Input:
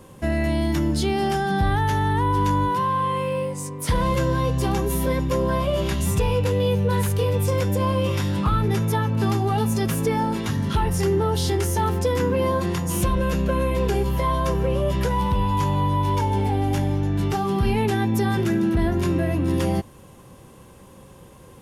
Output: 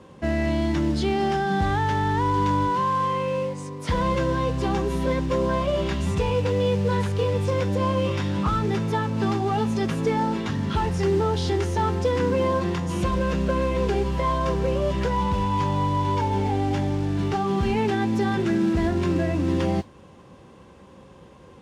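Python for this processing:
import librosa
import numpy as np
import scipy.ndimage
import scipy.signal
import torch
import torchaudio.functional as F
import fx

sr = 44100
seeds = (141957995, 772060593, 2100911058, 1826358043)

y = fx.peak_eq(x, sr, hz=120.0, db=-7.5, octaves=0.41)
y = fx.mod_noise(y, sr, seeds[0], snr_db=18)
y = scipy.signal.sosfilt(scipy.signal.butter(2, 63.0, 'highpass', fs=sr, output='sos'), y)
y = fx.air_absorb(y, sr, metres=110.0)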